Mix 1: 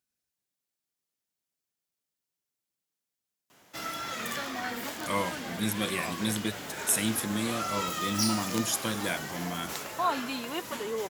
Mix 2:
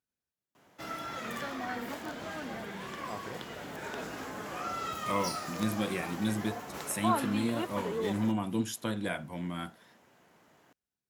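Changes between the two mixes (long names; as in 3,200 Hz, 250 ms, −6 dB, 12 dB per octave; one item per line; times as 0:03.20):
background: entry −2.95 s
master: add high-shelf EQ 2,400 Hz −11 dB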